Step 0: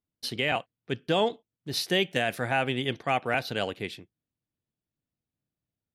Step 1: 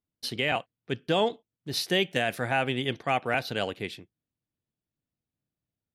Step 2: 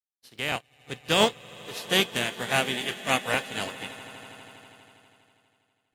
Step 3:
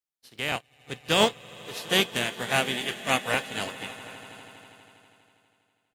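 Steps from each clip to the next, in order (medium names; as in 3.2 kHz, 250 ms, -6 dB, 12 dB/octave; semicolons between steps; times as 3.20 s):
no audible change
spectral contrast reduction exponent 0.23; echo with a slow build-up 81 ms, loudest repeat 8, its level -14 dB; spectral contrast expander 2.5:1
delay 754 ms -22.5 dB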